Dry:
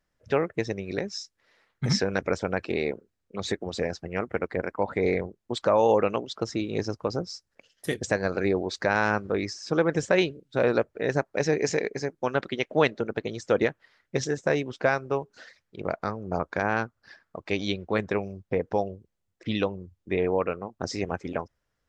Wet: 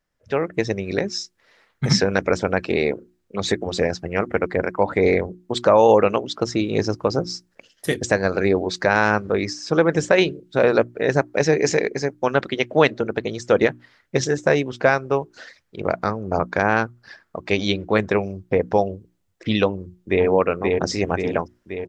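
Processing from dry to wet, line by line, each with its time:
0:19.67–0:20.25: delay throw 530 ms, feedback 60%, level −2.5 dB
whole clip: mains-hum notches 60/120/180/240/300/360 Hz; automatic gain control gain up to 8.5 dB

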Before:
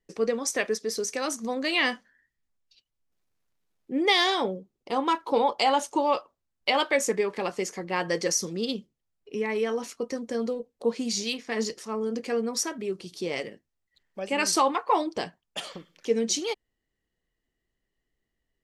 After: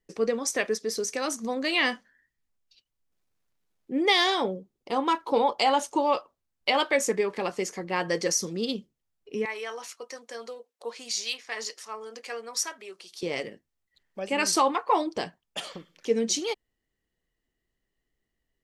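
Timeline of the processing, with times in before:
0:09.45–0:13.23: high-pass filter 810 Hz

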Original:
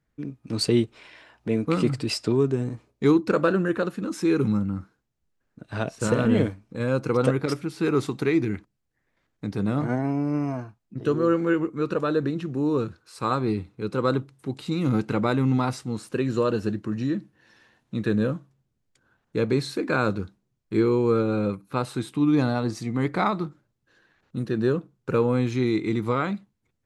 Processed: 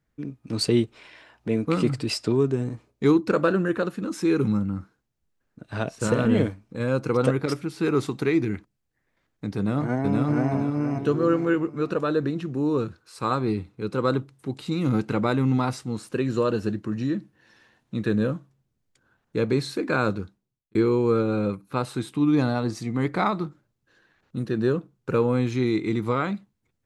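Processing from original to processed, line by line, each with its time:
0:09.57–0:10.51: delay throw 470 ms, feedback 35%, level −0.5 dB
0:20.09–0:20.75: fade out

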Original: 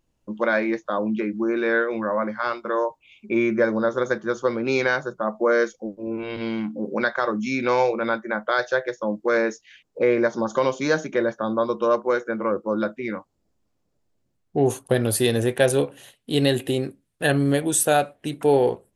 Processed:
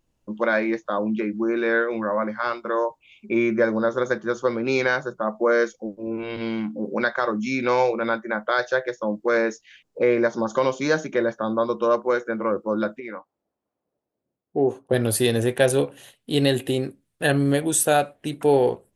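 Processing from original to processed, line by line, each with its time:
0:12.99–0:14.92: resonant band-pass 1,000 Hz → 370 Hz, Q 0.82

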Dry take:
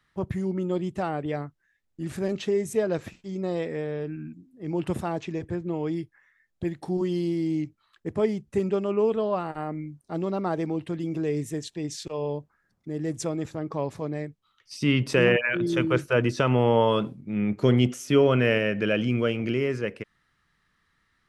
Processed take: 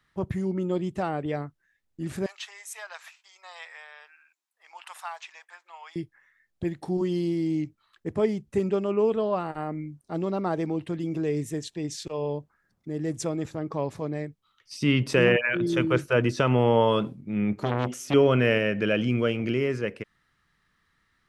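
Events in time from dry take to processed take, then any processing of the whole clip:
0:02.26–0:05.96: Butterworth high-pass 860 Hz
0:17.61–0:18.14: saturating transformer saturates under 1,000 Hz

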